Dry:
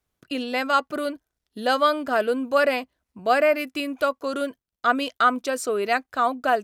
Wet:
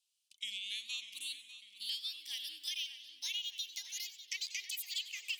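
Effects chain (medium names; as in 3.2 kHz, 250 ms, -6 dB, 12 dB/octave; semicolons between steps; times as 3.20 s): gliding tape speed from 69% -> 177%; elliptic high-pass 2.9 kHz, stop band 50 dB; treble shelf 4.1 kHz -6 dB; compression, threshold -45 dBFS, peak gain reduction 17 dB; tape echo 597 ms, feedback 65%, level -10.5 dB, low-pass 4.3 kHz; modulated delay 94 ms, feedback 61%, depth 134 cents, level -14 dB; trim +7.5 dB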